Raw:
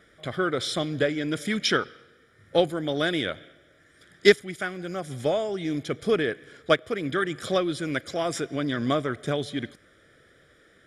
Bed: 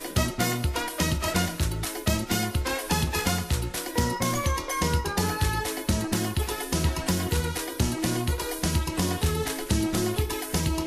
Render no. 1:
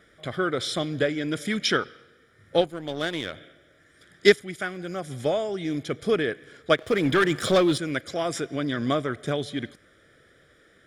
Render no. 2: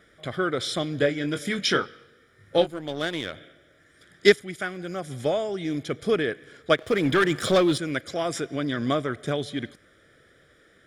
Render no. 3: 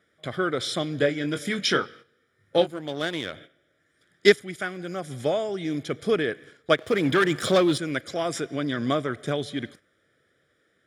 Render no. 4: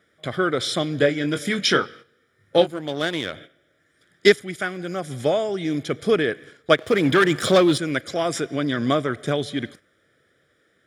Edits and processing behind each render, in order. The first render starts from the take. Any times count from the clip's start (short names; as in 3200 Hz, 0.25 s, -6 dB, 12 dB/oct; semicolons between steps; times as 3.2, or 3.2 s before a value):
2.61–3.33 power-law curve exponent 1.4; 6.78–7.78 sample leveller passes 2
0.98–2.79 doubler 21 ms -7.5 dB
HPF 82 Hz; gate -46 dBFS, range -10 dB
gain +4 dB; limiter -2 dBFS, peak gain reduction 3 dB